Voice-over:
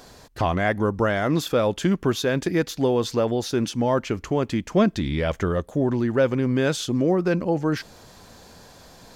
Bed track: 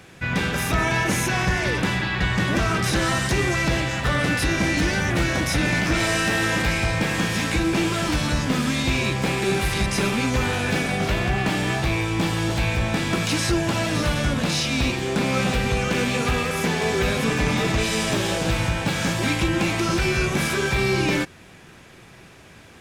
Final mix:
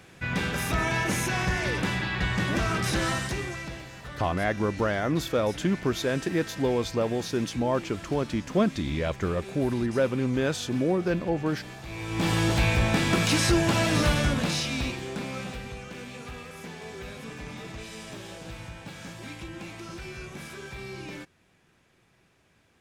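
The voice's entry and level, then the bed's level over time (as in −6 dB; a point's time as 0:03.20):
3.80 s, −4.5 dB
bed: 0:03.09 −5 dB
0:03.86 −19 dB
0:11.82 −19 dB
0:12.31 −0.5 dB
0:14.10 −0.5 dB
0:15.87 −18 dB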